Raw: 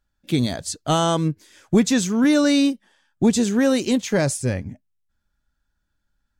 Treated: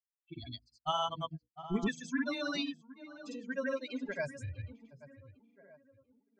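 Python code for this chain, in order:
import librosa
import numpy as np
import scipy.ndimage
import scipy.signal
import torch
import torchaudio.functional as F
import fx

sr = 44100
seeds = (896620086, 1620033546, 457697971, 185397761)

p1 = fx.bin_expand(x, sr, power=3.0)
p2 = fx.peak_eq(p1, sr, hz=130.0, db=-12.5, octaves=0.88)
p3 = fx.hum_notches(p2, sr, base_hz=60, count=8)
p4 = fx.rider(p3, sr, range_db=3, speed_s=0.5)
p5 = p3 + (p4 * librosa.db_to_amplitude(0.5))
p6 = scipy.signal.sosfilt(scipy.signal.butter(2, 4000.0, 'lowpass', fs=sr, output='sos'), p5)
p7 = fx.peak_eq(p6, sr, hz=410.0, db=-11.0, octaves=1.6)
p8 = fx.env_lowpass(p7, sr, base_hz=1300.0, full_db=-20.5)
p9 = p8 + fx.echo_tape(p8, sr, ms=743, feedback_pct=41, wet_db=-11.5, lp_hz=1300.0, drive_db=11.0, wow_cents=30, dry=0)
p10 = fx.granulator(p9, sr, seeds[0], grain_ms=100.0, per_s=20.0, spray_ms=100.0, spread_st=0)
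y = p10 * librosa.db_to_amplitude(-8.0)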